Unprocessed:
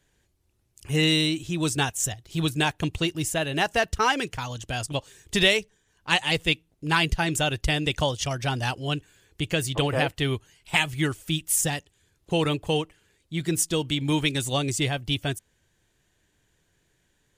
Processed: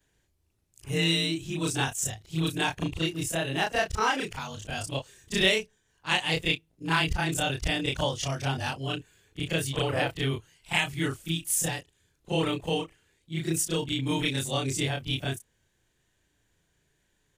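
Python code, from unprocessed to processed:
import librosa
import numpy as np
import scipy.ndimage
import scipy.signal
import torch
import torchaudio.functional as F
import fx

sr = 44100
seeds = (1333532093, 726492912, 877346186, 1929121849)

y = fx.frame_reverse(x, sr, frame_ms=74.0)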